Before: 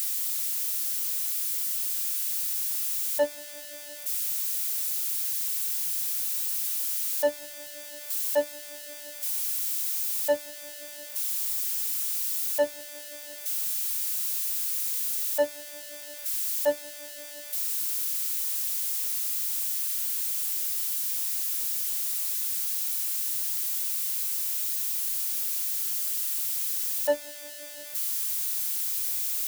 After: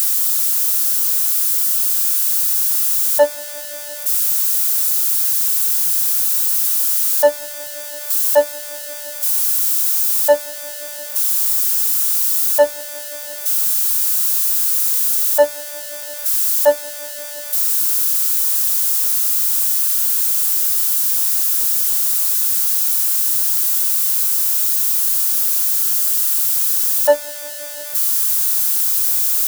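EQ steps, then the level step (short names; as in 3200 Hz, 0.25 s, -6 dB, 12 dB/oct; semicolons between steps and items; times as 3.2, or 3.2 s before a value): low shelf 130 Hz +6.5 dB; band shelf 960 Hz +10.5 dB; high shelf 2900 Hz +10 dB; +3.0 dB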